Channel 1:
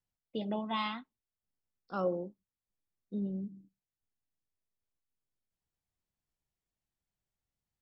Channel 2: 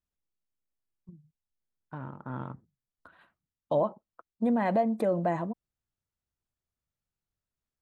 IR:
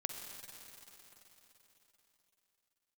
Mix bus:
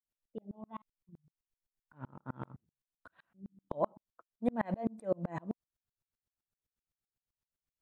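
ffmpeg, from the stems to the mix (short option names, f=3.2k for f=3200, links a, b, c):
-filter_complex "[0:a]lowpass=1.1k,volume=-2dB,asplit=3[a][b][c];[a]atrim=end=0.82,asetpts=PTS-STARTPTS,afade=t=out:st=0.816:d=0.004:c=hsin[d];[b]atrim=start=0.82:end=3.34,asetpts=PTS-STARTPTS,volume=0[e];[c]atrim=start=3.34,asetpts=PTS-STARTPTS,afade=t=in:d=0.004:c=hsin[f];[d][e][f]concat=n=3:v=0:a=1[g];[1:a]volume=2dB[h];[g][h]amix=inputs=2:normalize=0,aeval=exprs='val(0)*pow(10,-37*if(lt(mod(-7.8*n/s,1),2*abs(-7.8)/1000),1-mod(-7.8*n/s,1)/(2*abs(-7.8)/1000),(mod(-7.8*n/s,1)-2*abs(-7.8)/1000)/(1-2*abs(-7.8)/1000))/20)':c=same"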